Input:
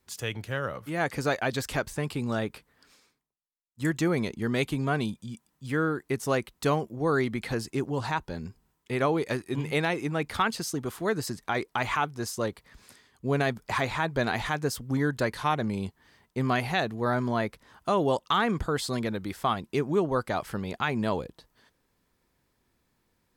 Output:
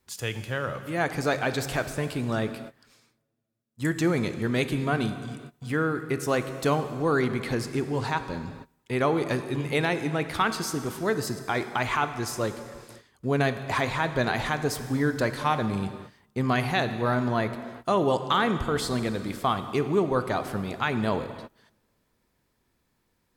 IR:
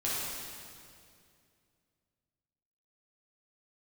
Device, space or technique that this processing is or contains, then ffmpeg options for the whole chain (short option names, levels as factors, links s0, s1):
keyed gated reverb: -filter_complex "[0:a]asplit=3[s0][s1][s2];[1:a]atrim=start_sample=2205[s3];[s1][s3]afir=irnorm=-1:irlink=0[s4];[s2]apad=whole_len=1030405[s5];[s4][s5]sidechaingate=range=0.0631:threshold=0.00178:ratio=16:detection=peak,volume=0.188[s6];[s0][s6]amix=inputs=2:normalize=0"